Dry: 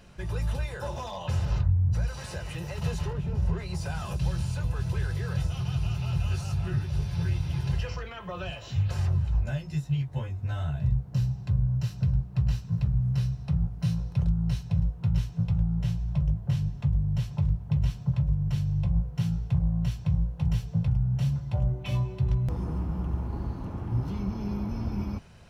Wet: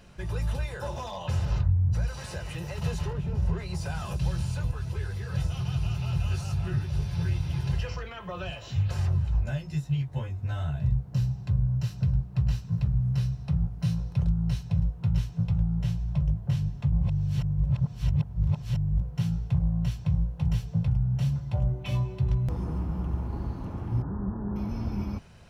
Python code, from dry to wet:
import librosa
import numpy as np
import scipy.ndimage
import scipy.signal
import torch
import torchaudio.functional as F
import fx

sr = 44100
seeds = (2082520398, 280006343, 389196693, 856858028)

y = fx.ensemble(x, sr, at=(4.71, 5.34))
y = fx.cheby1_lowpass(y, sr, hz=1800.0, order=8, at=(24.02, 24.56))
y = fx.edit(y, sr, fx.reverse_span(start_s=16.92, length_s=2.09), tone=tone)